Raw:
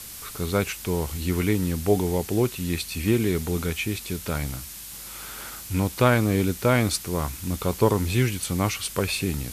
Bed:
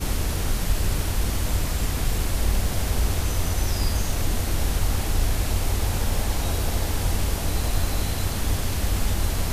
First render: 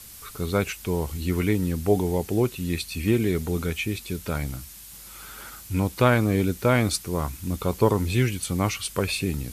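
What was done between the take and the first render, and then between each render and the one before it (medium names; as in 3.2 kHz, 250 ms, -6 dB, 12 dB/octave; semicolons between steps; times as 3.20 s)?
noise reduction 6 dB, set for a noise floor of -39 dBFS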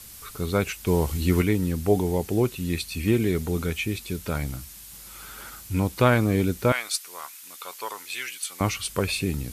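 0.87–1.42 s: gain +4 dB; 6.72–8.61 s: high-pass 1.3 kHz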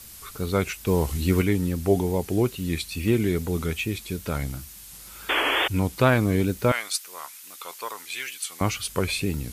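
5.29–5.68 s: painted sound noise 270–3500 Hz -23 dBFS; wow and flutter 75 cents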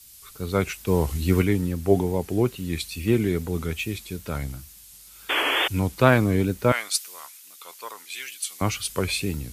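three bands expanded up and down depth 40%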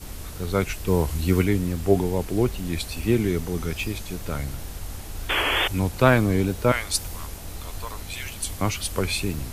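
add bed -12 dB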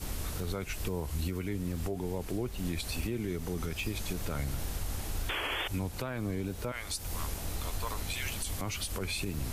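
compression 10:1, threshold -28 dBFS, peak gain reduction 17.5 dB; peak limiter -24 dBFS, peak gain reduction 8.5 dB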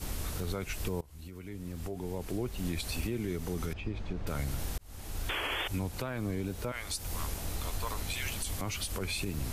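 1.01–2.45 s: fade in, from -22.5 dB; 3.73–4.27 s: tape spacing loss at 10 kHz 32 dB; 4.78–5.30 s: fade in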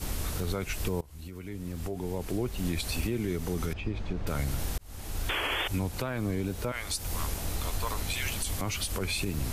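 trim +3.5 dB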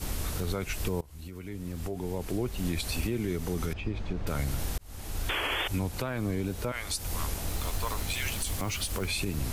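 7.48–9.10 s: block-companded coder 5-bit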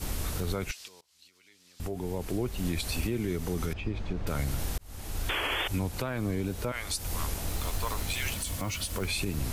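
0.71–1.80 s: band-pass filter 4.7 kHz, Q 1.5; 8.34–8.97 s: comb of notches 400 Hz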